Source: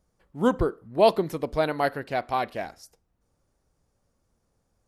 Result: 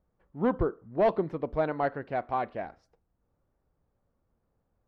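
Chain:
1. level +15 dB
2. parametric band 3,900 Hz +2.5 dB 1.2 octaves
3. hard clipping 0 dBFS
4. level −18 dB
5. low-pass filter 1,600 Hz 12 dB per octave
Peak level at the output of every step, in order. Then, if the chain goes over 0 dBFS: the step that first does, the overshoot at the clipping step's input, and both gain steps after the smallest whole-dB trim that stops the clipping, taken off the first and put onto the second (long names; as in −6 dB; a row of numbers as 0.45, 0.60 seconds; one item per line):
+8.5, +9.0, 0.0, −18.0, −17.5 dBFS
step 1, 9.0 dB
step 1 +6 dB, step 4 −9 dB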